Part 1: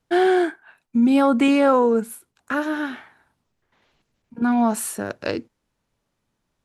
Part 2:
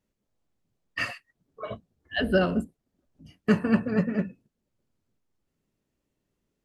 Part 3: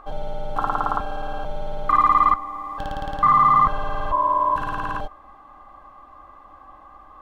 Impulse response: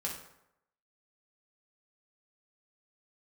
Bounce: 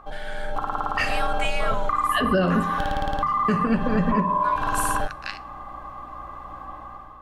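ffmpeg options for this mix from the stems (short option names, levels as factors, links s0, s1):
-filter_complex "[0:a]highpass=f=1300:w=0.5412,highpass=f=1300:w=1.3066,volume=0.251,asplit=2[s0][s1];[s1]volume=0.188[s2];[1:a]volume=0.631,asplit=2[s3][s4];[s4]volume=0.316[s5];[2:a]acompressor=threshold=0.0501:ratio=12,aeval=exprs='val(0)+0.00158*(sin(2*PI*60*n/s)+sin(2*PI*2*60*n/s)/2+sin(2*PI*3*60*n/s)/3+sin(2*PI*4*60*n/s)/4+sin(2*PI*5*60*n/s)/5)':c=same,volume=0.794[s6];[3:a]atrim=start_sample=2205[s7];[s2][s5]amix=inputs=2:normalize=0[s8];[s8][s7]afir=irnorm=-1:irlink=0[s9];[s0][s3][s6][s9]amix=inputs=4:normalize=0,bandreject=f=48.72:t=h:w=4,bandreject=f=97.44:t=h:w=4,bandreject=f=146.16:t=h:w=4,dynaudnorm=f=210:g=5:m=3.16,alimiter=limit=0.251:level=0:latency=1:release=134"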